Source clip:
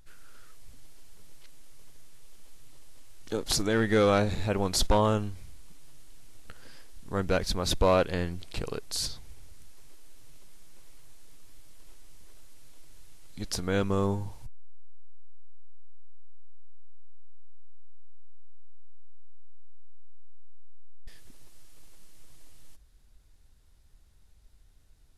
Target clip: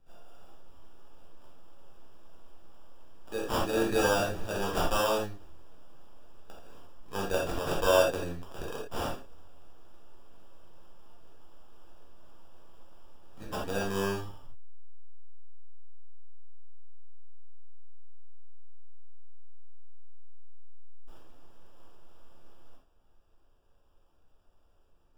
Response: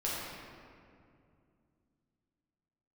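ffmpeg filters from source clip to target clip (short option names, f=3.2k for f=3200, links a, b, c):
-filter_complex "[0:a]lowshelf=f=230:g=-11.5,acrossover=split=170[a][b];[b]acrusher=samples=21:mix=1:aa=0.000001[c];[a][c]amix=inputs=2:normalize=0[d];[1:a]atrim=start_sample=2205,atrim=end_sample=3969[e];[d][e]afir=irnorm=-1:irlink=0,volume=-3.5dB"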